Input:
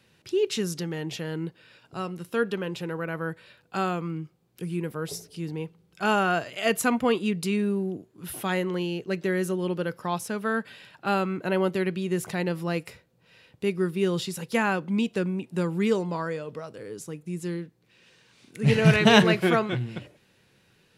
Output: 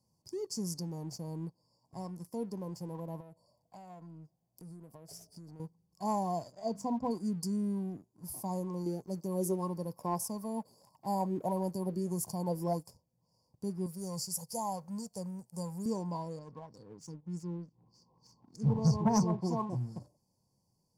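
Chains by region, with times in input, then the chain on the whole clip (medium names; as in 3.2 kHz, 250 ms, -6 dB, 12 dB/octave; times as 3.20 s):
3.20–5.60 s: peaking EQ 650 Hz +12.5 dB 0.31 oct + compression, threshold -38 dBFS
6.52–7.11 s: distance through air 140 m + hum notches 50/100/150/200/250 Hz
8.86–12.86 s: treble shelf 11 kHz +12 dB + sweeping bell 1.6 Hz 370–3000 Hz +13 dB
13.86–15.86 s: treble shelf 4 kHz +9 dB + static phaser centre 700 Hz, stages 4
16.39–19.70 s: peaking EQ 620 Hz -8.5 dB 0.45 oct + upward compressor, threshold -39 dBFS + LFO low-pass sine 3.3 Hz 810–6500 Hz
whole clip: FFT band-reject 1.1–4.4 kHz; peaking EQ 410 Hz -10.5 dB 0.89 oct; waveshaping leveller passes 1; trim -8.5 dB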